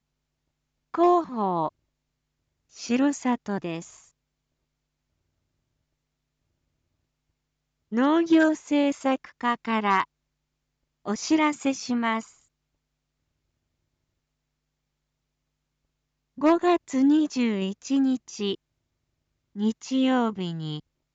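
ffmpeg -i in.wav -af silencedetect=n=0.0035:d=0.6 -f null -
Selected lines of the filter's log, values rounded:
silence_start: 0.00
silence_end: 0.94 | silence_duration: 0.94
silence_start: 1.69
silence_end: 2.73 | silence_duration: 1.04
silence_start: 4.06
silence_end: 7.92 | silence_duration: 3.86
silence_start: 10.05
silence_end: 11.05 | silence_duration: 1.01
silence_start: 12.35
silence_end: 16.38 | silence_duration: 4.03
silence_start: 18.55
silence_end: 19.55 | silence_duration: 1.00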